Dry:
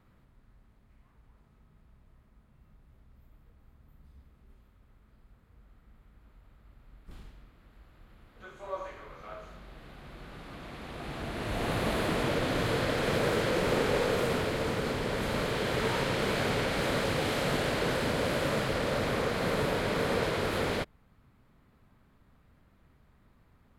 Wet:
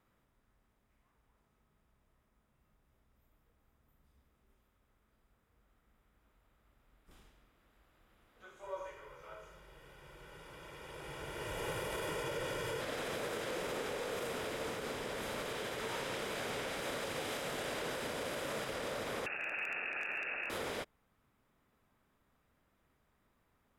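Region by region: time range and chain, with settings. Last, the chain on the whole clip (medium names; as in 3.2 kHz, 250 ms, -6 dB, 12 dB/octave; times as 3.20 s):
8.63–12.81 s: peaking EQ 150 Hz +6 dB 0.73 oct + band-stop 3.9 kHz, Q 9.3 + comb 2.1 ms, depth 71%
19.26–20.50 s: comb filter that takes the minimum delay 0.9 ms + frequency inversion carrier 2.7 kHz + hard clipper -22 dBFS
whole clip: tone controls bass -9 dB, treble +5 dB; peak limiter -23 dBFS; band-stop 4.3 kHz, Q 7.9; trim -7 dB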